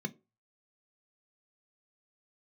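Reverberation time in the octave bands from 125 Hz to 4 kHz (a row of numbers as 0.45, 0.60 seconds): 0.25, 0.25, 0.35, 0.30, 0.20, 0.15 seconds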